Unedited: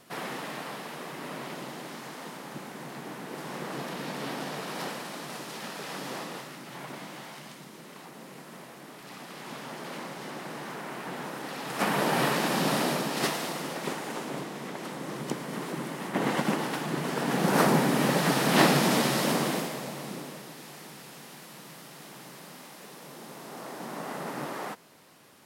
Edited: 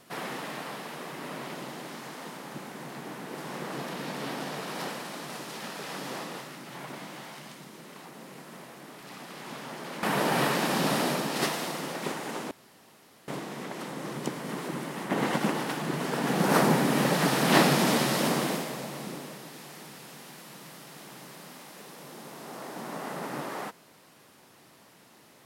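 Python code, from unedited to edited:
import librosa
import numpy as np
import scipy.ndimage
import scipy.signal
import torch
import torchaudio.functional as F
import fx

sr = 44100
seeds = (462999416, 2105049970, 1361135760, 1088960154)

y = fx.edit(x, sr, fx.cut(start_s=10.03, length_s=1.81),
    fx.insert_room_tone(at_s=14.32, length_s=0.77), tone=tone)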